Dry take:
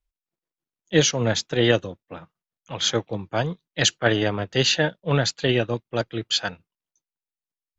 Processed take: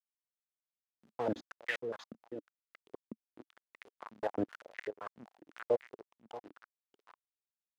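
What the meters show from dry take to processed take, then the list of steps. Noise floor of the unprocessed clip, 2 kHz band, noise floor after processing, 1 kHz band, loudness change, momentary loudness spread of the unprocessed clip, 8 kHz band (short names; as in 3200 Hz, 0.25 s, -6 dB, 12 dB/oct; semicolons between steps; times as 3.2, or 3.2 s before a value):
under -85 dBFS, -18.0 dB, under -85 dBFS, -14.0 dB, -17.0 dB, 11 LU, n/a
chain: bell 450 Hz +6.5 dB 0.27 oct; compressor 2:1, threshold -23 dBFS, peak gain reduction 8 dB; auto swell 0.461 s; level quantiser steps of 15 dB; bit-crush 6-bit; on a send: echo 0.632 s -10.5 dB; on the sum: stepped band-pass 7.8 Hz 220–2000 Hz; gain +10 dB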